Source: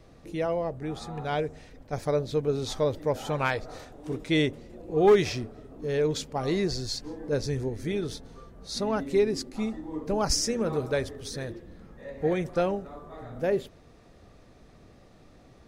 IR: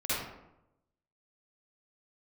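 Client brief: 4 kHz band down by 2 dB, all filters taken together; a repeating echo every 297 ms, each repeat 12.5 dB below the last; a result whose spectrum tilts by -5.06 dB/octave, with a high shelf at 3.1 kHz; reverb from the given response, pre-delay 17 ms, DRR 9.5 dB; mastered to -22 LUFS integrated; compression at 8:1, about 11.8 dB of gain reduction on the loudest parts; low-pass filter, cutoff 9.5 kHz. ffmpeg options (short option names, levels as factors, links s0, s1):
-filter_complex "[0:a]lowpass=9500,highshelf=f=3100:g=4,equalizer=f=4000:t=o:g=-6,acompressor=threshold=0.0447:ratio=8,aecho=1:1:297|594|891:0.237|0.0569|0.0137,asplit=2[s0][s1];[1:a]atrim=start_sample=2205,adelay=17[s2];[s1][s2]afir=irnorm=-1:irlink=0,volume=0.133[s3];[s0][s3]amix=inputs=2:normalize=0,volume=3.76"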